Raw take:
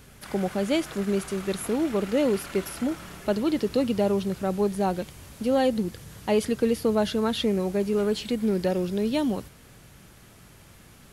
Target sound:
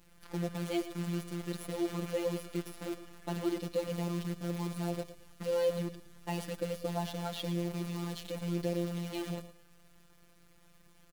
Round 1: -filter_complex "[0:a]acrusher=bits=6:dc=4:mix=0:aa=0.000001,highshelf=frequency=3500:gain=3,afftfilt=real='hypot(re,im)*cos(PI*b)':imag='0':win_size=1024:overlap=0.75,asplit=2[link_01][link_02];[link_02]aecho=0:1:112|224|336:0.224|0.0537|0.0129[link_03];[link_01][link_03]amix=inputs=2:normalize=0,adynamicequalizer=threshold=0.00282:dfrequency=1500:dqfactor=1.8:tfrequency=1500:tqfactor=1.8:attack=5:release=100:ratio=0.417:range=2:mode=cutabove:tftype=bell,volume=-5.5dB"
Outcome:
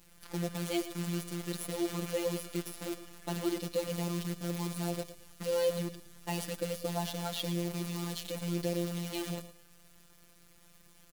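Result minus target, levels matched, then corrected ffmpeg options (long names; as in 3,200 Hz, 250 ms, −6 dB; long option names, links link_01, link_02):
8,000 Hz band +6.0 dB
-filter_complex "[0:a]acrusher=bits=6:dc=4:mix=0:aa=0.000001,highshelf=frequency=3500:gain=-5,afftfilt=real='hypot(re,im)*cos(PI*b)':imag='0':win_size=1024:overlap=0.75,asplit=2[link_01][link_02];[link_02]aecho=0:1:112|224|336:0.224|0.0537|0.0129[link_03];[link_01][link_03]amix=inputs=2:normalize=0,adynamicequalizer=threshold=0.00282:dfrequency=1500:dqfactor=1.8:tfrequency=1500:tqfactor=1.8:attack=5:release=100:ratio=0.417:range=2:mode=cutabove:tftype=bell,volume=-5.5dB"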